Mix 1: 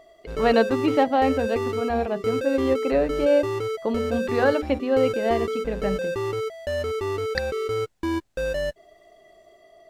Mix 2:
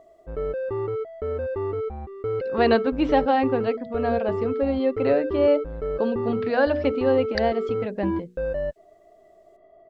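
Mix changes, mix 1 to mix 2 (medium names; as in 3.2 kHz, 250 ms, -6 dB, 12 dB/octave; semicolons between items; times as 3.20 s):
first voice: entry +2.15 s; second voice: add high-pass 1.4 kHz; background: add low-pass 1.1 kHz 12 dB/octave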